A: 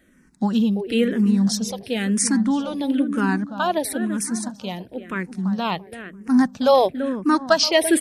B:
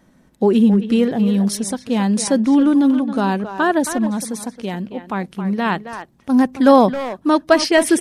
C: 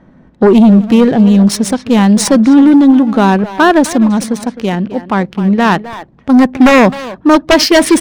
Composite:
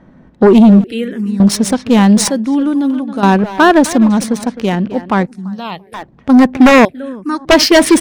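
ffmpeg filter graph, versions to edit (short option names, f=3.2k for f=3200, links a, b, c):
-filter_complex "[0:a]asplit=3[a][b][c];[2:a]asplit=5[d][e][f][g][h];[d]atrim=end=0.842[i];[a]atrim=start=0.838:end=1.402[j];[e]atrim=start=1.398:end=2.302[k];[1:a]atrim=start=2.298:end=3.232[l];[f]atrim=start=3.228:end=5.272[m];[b]atrim=start=5.268:end=5.942[n];[g]atrim=start=5.938:end=6.852[o];[c]atrim=start=6.848:end=7.452[p];[h]atrim=start=7.448[q];[i][j]acrossfade=d=0.004:c1=hsin:c2=hsin[r];[r][k]acrossfade=d=0.004:c1=hsin:c2=hsin[s];[s][l]acrossfade=d=0.004:c1=hsin:c2=hsin[t];[t][m]acrossfade=d=0.004:c1=hsin:c2=hsin[u];[u][n]acrossfade=d=0.004:c1=hsin:c2=hsin[v];[v][o]acrossfade=d=0.004:c1=hsin:c2=hsin[w];[w][p]acrossfade=d=0.004:c1=hsin:c2=hsin[x];[x][q]acrossfade=d=0.004:c1=hsin:c2=hsin"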